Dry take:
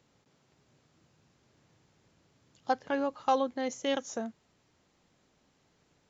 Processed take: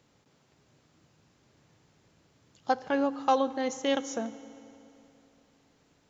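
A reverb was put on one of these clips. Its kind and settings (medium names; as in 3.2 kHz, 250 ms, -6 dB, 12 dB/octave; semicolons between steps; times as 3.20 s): FDN reverb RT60 3 s, high-frequency decay 0.85×, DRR 14.5 dB; trim +2.5 dB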